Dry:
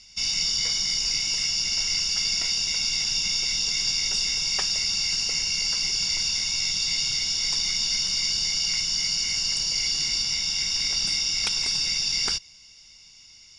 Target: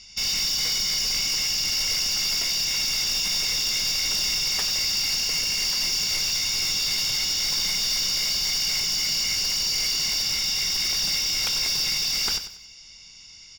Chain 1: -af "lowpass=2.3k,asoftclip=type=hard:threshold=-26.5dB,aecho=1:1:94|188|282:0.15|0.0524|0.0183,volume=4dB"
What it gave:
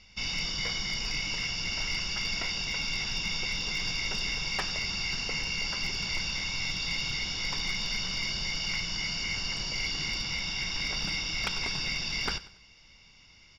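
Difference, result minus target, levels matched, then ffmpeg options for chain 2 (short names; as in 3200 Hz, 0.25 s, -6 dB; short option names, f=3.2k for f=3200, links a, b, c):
2000 Hz band +8.0 dB; echo-to-direct -6 dB
-af "lowpass=8.4k,asoftclip=type=hard:threshold=-26.5dB,aecho=1:1:94|188|282|376:0.299|0.104|0.0366|0.0128,volume=4dB"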